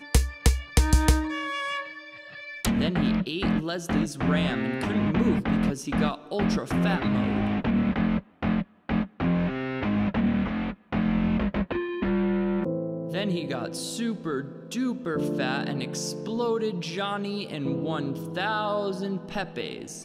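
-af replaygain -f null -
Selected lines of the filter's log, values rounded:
track_gain = +8.6 dB
track_peak = 0.301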